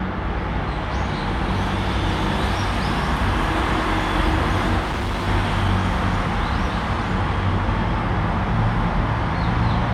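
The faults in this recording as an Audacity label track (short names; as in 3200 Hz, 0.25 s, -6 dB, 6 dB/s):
4.800000	5.280000	clipped -20.5 dBFS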